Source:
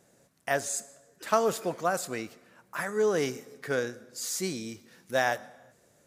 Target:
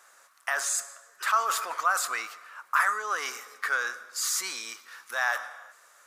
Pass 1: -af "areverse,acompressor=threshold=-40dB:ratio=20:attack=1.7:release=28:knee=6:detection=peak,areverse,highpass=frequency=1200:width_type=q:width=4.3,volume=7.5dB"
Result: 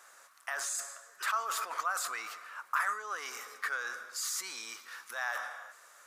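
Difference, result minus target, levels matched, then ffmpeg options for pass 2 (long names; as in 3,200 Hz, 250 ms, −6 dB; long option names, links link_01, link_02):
downward compressor: peak gain reduction +8.5 dB
-af "areverse,acompressor=threshold=-31dB:ratio=20:attack=1.7:release=28:knee=6:detection=peak,areverse,highpass=frequency=1200:width_type=q:width=4.3,volume=7.5dB"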